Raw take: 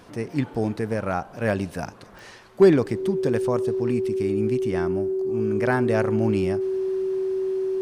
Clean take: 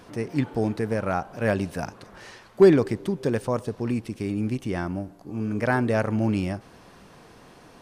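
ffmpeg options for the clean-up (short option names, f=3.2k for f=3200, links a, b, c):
-af "adeclick=t=4,bandreject=f=380:w=30"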